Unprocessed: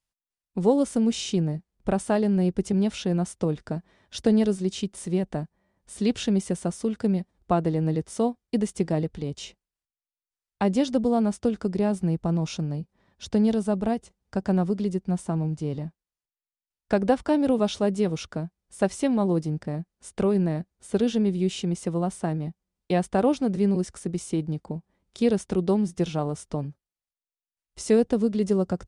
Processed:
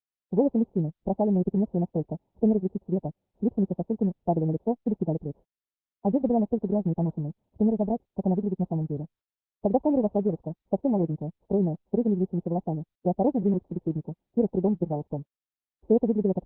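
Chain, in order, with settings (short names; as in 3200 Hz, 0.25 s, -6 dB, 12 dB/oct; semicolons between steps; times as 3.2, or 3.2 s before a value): G.711 law mismatch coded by A; steep low-pass 920 Hz 72 dB/oct; time stretch by phase-locked vocoder 0.57×; Opus 8 kbps 48000 Hz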